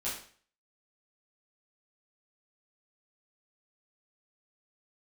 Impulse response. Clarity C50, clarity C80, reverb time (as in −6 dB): 4.5 dB, 9.0 dB, 0.45 s